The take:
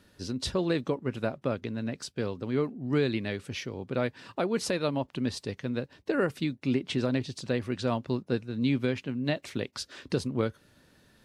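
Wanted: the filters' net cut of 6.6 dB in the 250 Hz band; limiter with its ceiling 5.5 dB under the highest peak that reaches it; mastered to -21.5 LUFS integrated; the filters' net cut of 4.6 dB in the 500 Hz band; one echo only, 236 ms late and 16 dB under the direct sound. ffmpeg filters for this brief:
-af "equalizer=f=250:t=o:g=-7,equalizer=f=500:t=o:g=-3.5,alimiter=limit=0.075:level=0:latency=1,aecho=1:1:236:0.158,volume=5.62"

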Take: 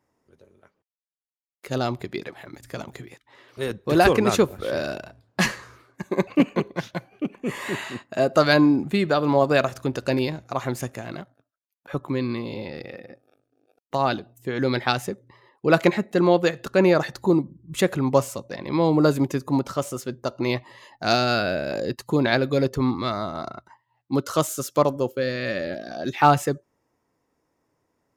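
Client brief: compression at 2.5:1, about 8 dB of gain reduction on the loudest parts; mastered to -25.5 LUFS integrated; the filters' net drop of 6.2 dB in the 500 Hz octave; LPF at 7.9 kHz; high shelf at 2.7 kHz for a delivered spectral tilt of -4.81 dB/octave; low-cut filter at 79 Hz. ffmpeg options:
-af "highpass=79,lowpass=7900,equalizer=f=500:t=o:g=-8,highshelf=f=2700:g=-3,acompressor=threshold=0.0501:ratio=2.5,volume=2"

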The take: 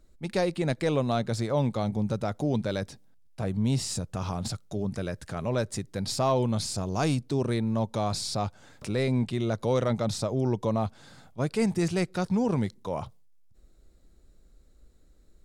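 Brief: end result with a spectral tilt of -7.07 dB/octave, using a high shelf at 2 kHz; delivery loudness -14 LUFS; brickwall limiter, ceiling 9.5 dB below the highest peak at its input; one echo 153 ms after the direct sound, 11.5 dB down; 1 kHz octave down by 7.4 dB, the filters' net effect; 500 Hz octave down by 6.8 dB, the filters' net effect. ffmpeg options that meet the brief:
-af "equalizer=f=500:t=o:g=-6.5,equalizer=f=1000:t=o:g=-5.5,highshelf=f=2000:g=-8.5,alimiter=level_in=1.5:limit=0.0631:level=0:latency=1,volume=0.668,aecho=1:1:153:0.266,volume=13.3"

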